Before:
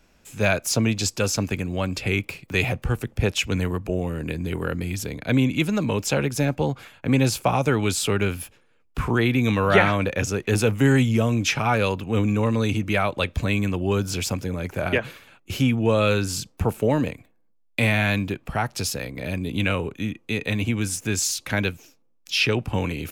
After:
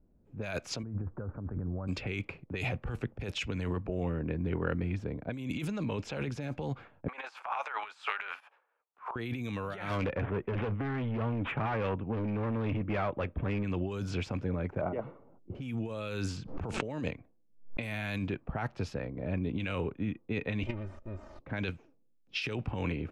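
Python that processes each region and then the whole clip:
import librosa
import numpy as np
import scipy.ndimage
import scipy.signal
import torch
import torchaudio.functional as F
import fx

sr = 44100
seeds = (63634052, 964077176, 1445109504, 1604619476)

y = fx.chain(x, sr, fx.steep_lowpass(hz=1500.0, slope=48),
    fx.low_shelf(hz=170.0, db=9.5), at=(0.83, 1.88))
y = fx.chain(y, sr, fx.highpass(hz=920.0, slope=24),
    fx.transient(attack_db=-11, sustain_db=12),
    fx.band_squash(depth_pct=40), at=(7.08, 9.16))
y = fx.chain(y, sr, fx.high_shelf(hz=4000.0, db=-7.5),
    fx.resample_bad(factor=6, down='none', up='filtered'),
    fx.overload_stage(gain_db=22.0), at=(9.89, 13.64))
y = fx.chain(y, sr, fx.law_mismatch(coded='mu'),
    fx.savgol(points=65),
    fx.peak_eq(hz=63.0, db=-10.5, octaves=1.7), at=(14.81, 15.55))
y = fx.chain(y, sr, fx.lowpass(hz=7800.0, slope=24),
    fx.pre_swell(db_per_s=130.0), at=(16.37, 17.83))
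y = fx.chain(y, sr, fx.lower_of_two(delay_ms=1.6),
    fx.comb(ms=3.3, depth=0.85),
    fx.level_steps(step_db=11), at=(20.63, 21.4))
y = fx.env_lowpass(y, sr, base_hz=360.0, full_db=-16.0)
y = fx.over_compress(y, sr, threshold_db=-26.0, ratio=-1.0)
y = y * librosa.db_to_amplitude(-7.5)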